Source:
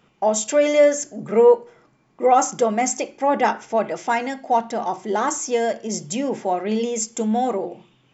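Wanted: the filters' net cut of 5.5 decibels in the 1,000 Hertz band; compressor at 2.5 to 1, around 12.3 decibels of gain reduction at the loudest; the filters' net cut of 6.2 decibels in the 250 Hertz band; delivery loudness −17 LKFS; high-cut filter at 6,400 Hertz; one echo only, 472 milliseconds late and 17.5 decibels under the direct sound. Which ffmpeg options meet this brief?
ffmpeg -i in.wav -af "lowpass=6400,equalizer=frequency=250:width_type=o:gain=-7,equalizer=frequency=1000:width_type=o:gain=-7.5,acompressor=threshold=-32dB:ratio=2.5,aecho=1:1:472:0.133,volume=16dB" out.wav

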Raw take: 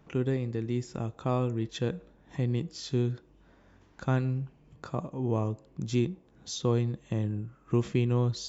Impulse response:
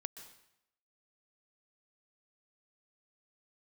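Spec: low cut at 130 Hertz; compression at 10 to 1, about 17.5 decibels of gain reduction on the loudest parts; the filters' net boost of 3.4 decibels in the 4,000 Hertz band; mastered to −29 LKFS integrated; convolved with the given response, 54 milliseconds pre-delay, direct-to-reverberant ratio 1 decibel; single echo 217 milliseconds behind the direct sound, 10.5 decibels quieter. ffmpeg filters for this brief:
-filter_complex "[0:a]highpass=130,equalizer=frequency=4000:width_type=o:gain=4,acompressor=threshold=-40dB:ratio=10,aecho=1:1:217:0.299,asplit=2[link_01][link_02];[1:a]atrim=start_sample=2205,adelay=54[link_03];[link_02][link_03]afir=irnorm=-1:irlink=0,volume=1.5dB[link_04];[link_01][link_04]amix=inputs=2:normalize=0,volume=14dB"

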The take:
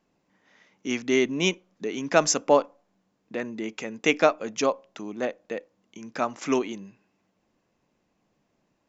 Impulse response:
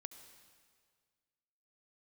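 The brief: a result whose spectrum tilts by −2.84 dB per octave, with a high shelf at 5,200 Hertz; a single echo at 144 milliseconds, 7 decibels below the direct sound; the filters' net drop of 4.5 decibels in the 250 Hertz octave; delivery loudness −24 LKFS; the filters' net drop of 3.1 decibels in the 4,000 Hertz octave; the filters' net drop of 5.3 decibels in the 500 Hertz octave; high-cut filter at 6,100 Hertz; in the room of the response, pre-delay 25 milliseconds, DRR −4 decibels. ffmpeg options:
-filter_complex "[0:a]lowpass=6100,equalizer=frequency=250:width_type=o:gain=-3.5,equalizer=frequency=500:width_type=o:gain=-6,equalizer=frequency=4000:width_type=o:gain=-7.5,highshelf=frequency=5200:gain=8,aecho=1:1:144:0.447,asplit=2[link_01][link_02];[1:a]atrim=start_sample=2205,adelay=25[link_03];[link_02][link_03]afir=irnorm=-1:irlink=0,volume=9dB[link_04];[link_01][link_04]amix=inputs=2:normalize=0"

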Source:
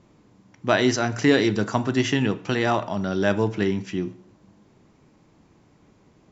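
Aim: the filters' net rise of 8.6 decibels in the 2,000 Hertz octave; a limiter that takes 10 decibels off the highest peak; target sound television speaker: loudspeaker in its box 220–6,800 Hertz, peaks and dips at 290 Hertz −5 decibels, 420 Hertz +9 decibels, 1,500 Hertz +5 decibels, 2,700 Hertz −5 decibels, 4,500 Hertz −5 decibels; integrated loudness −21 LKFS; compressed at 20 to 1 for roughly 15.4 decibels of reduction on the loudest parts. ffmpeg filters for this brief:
ffmpeg -i in.wav -af "equalizer=frequency=2000:width_type=o:gain=8.5,acompressor=threshold=-26dB:ratio=20,alimiter=limit=-21dB:level=0:latency=1,highpass=frequency=220:width=0.5412,highpass=frequency=220:width=1.3066,equalizer=frequency=290:width_type=q:width=4:gain=-5,equalizer=frequency=420:width_type=q:width=4:gain=9,equalizer=frequency=1500:width_type=q:width=4:gain=5,equalizer=frequency=2700:width_type=q:width=4:gain=-5,equalizer=frequency=4500:width_type=q:width=4:gain=-5,lowpass=frequency=6800:width=0.5412,lowpass=frequency=6800:width=1.3066,volume=11.5dB" out.wav

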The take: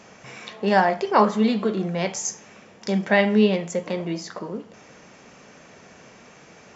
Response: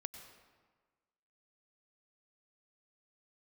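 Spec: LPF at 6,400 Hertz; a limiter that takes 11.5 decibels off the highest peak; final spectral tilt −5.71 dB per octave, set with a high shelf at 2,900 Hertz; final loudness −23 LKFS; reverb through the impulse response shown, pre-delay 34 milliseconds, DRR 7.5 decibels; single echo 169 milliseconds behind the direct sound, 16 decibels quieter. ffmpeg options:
-filter_complex "[0:a]lowpass=6400,highshelf=frequency=2900:gain=-3.5,alimiter=limit=-15dB:level=0:latency=1,aecho=1:1:169:0.158,asplit=2[link_01][link_02];[1:a]atrim=start_sample=2205,adelay=34[link_03];[link_02][link_03]afir=irnorm=-1:irlink=0,volume=-4.5dB[link_04];[link_01][link_04]amix=inputs=2:normalize=0,volume=3dB"

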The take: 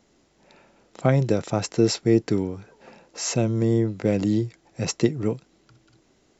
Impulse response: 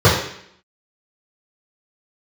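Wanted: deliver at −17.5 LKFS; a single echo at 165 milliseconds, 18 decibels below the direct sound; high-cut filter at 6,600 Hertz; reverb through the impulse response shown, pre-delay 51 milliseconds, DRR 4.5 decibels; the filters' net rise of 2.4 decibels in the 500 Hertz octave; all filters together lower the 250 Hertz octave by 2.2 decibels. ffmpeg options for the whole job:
-filter_complex "[0:a]lowpass=6600,equalizer=frequency=250:width_type=o:gain=-5.5,equalizer=frequency=500:width_type=o:gain=5,aecho=1:1:165:0.126,asplit=2[link_01][link_02];[1:a]atrim=start_sample=2205,adelay=51[link_03];[link_02][link_03]afir=irnorm=-1:irlink=0,volume=-31.5dB[link_04];[link_01][link_04]amix=inputs=2:normalize=0,volume=1.5dB"

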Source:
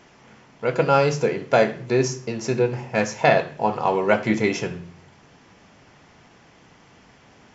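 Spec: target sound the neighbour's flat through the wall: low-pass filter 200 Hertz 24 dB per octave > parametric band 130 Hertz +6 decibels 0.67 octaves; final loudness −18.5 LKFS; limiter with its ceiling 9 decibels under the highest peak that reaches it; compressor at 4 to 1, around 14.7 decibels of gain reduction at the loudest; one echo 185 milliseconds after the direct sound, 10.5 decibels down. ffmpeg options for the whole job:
ffmpeg -i in.wav -af "acompressor=threshold=-30dB:ratio=4,alimiter=limit=-23dB:level=0:latency=1,lowpass=frequency=200:width=0.5412,lowpass=frequency=200:width=1.3066,equalizer=frequency=130:width_type=o:width=0.67:gain=6,aecho=1:1:185:0.299,volume=21dB" out.wav

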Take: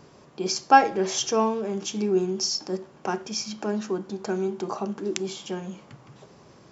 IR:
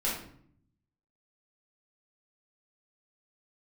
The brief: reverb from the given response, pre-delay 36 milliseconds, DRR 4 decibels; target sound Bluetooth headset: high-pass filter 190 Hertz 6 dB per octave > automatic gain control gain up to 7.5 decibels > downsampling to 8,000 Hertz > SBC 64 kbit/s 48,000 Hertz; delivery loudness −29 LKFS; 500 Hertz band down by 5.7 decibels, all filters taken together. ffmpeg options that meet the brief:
-filter_complex "[0:a]equalizer=frequency=500:width_type=o:gain=-7,asplit=2[link_01][link_02];[1:a]atrim=start_sample=2205,adelay=36[link_03];[link_02][link_03]afir=irnorm=-1:irlink=0,volume=-11.5dB[link_04];[link_01][link_04]amix=inputs=2:normalize=0,highpass=frequency=190:poles=1,dynaudnorm=maxgain=7.5dB,aresample=8000,aresample=44100,volume=-0.5dB" -ar 48000 -c:a sbc -b:a 64k

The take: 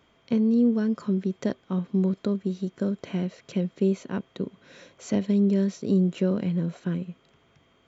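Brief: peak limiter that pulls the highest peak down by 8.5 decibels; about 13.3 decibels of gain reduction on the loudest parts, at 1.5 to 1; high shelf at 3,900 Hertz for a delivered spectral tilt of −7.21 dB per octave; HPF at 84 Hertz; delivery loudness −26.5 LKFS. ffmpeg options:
ffmpeg -i in.wav -af "highpass=84,highshelf=frequency=3900:gain=6.5,acompressor=threshold=-57dB:ratio=1.5,volume=16dB,alimiter=limit=-17dB:level=0:latency=1" out.wav

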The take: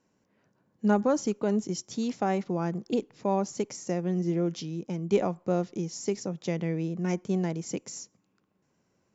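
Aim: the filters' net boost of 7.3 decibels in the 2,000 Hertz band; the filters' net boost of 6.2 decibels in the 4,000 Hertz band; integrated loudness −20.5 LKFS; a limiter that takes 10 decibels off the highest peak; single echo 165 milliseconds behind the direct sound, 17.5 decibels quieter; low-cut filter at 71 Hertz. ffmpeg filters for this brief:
ffmpeg -i in.wav -af "highpass=71,equalizer=frequency=2000:width_type=o:gain=8,equalizer=frequency=4000:width_type=o:gain=6.5,alimiter=limit=-19.5dB:level=0:latency=1,aecho=1:1:165:0.133,volume=11dB" out.wav

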